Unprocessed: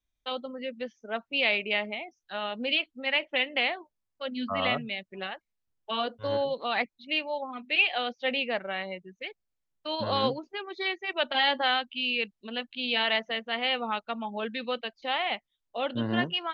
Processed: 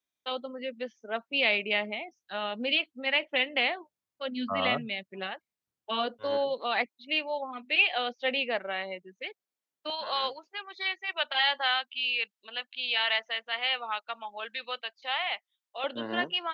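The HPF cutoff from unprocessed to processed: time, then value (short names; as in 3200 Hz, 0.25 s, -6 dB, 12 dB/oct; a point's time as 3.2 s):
230 Hz
from 1.31 s 110 Hz
from 6.14 s 260 Hz
from 9.9 s 850 Hz
from 15.84 s 360 Hz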